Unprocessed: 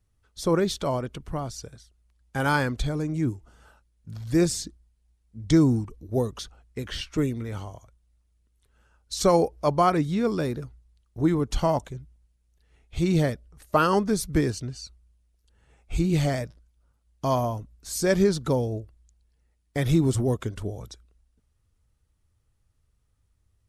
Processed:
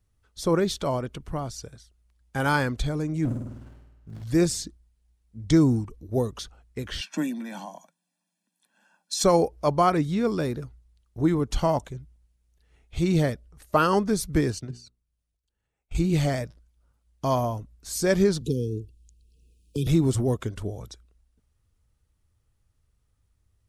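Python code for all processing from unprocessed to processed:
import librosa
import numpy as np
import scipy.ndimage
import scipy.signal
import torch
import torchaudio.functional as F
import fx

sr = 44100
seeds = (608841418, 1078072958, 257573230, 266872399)

y = fx.chain(x, sr, fx.hum_notches(base_hz=50, count=8),
    fx.room_flutter(wall_m=8.8, rt60_s=0.94),
    fx.running_max(window=33), at=(3.25, 4.23))
y = fx.chain(y, sr, fx.steep_highpass(hz=170.0, slope=96),
    fx.comb(ms=1.2, depth=1.0), at=(7.02, 9.24))
y = fx.chain(y, sr, fx.level_steps(step_db=17),
    fx.hum_notches(base_hz=60, count=8),
    fx.band_widen(depth_pct=40), at=(14.59, 15.95))
y = fx.chain(y, sr, fx.brickwall_bandstop(low_hz=500.0, high_hz=2400.0),
    fx.band_squash(depth_pct=40), at=(18.41, 19.87))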